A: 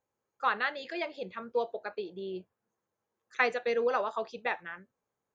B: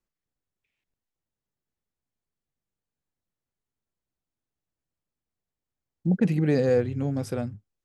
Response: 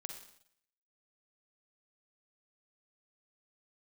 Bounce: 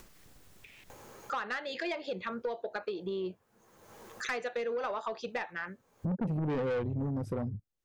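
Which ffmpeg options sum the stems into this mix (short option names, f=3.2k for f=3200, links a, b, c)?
-filter_complex "[0:a]adelay=900,volume=-2.5dB[a];[1:a]afwtdn=0.0126,volume=2.5dB[b];[a][b]amix=inputs=2:normalize=0,acompressor=mode=upward:threshold=-23dB:ratio=2.5,asoftclip=type=tanh:threshold=-23dB,acompressor=threshold=-32dB:ratio=3"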